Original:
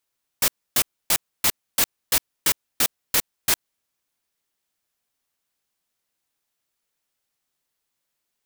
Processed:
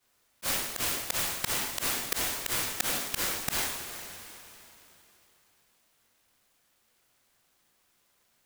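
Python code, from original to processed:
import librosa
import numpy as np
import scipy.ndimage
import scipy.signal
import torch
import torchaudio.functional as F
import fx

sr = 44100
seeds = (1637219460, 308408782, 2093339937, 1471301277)

y = fx.rev_double_slope(x, sr, seeds[0], early_s=0.56, late_s=3.2, knee_db=-26, drr_db=-10.0)
y = fx.auto_swell(y, sr, attack_ms=474.0)
y = fx.noise_mod_delay(y, sr, seeds[1], noise_hz=4900.0, depth_ms=0.062)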